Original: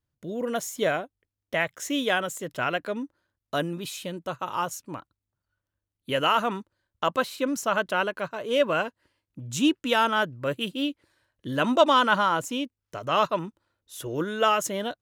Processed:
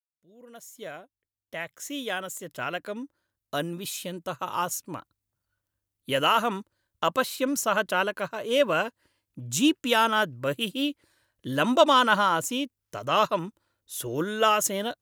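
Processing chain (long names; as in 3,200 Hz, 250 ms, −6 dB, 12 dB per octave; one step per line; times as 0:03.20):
fade in at the beginning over 4.71 s
high-shelf EQ 6,500 Hz +9 dB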